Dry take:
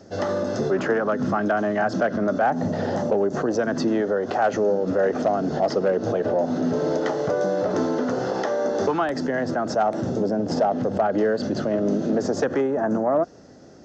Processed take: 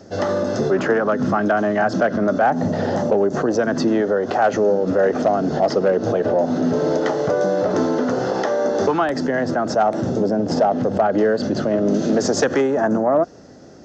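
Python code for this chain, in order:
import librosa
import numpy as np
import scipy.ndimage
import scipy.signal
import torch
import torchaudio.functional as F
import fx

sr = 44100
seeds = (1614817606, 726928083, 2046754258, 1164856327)

y = fx.high_shelf(x, sr, hz=2200.0, db=9.5, at=(11.94, 12.88))
y = F.gain(torch.from_numpy(y), 4.0).numpy()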